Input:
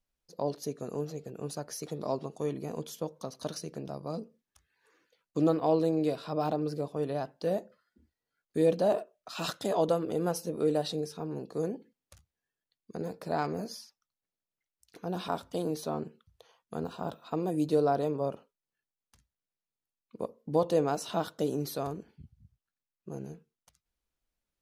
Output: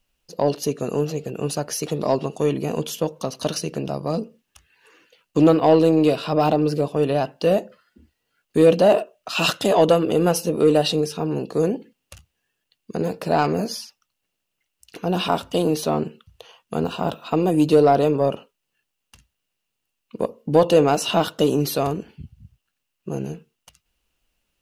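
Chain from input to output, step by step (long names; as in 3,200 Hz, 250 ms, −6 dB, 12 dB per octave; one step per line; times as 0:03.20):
parametric band 2,800 Hz +12.5 dB 0.23 octaves
in parallel at −4 dB: soft clipping −25 dBFS, distortion −11 dB
on the sum: level +8.5 dB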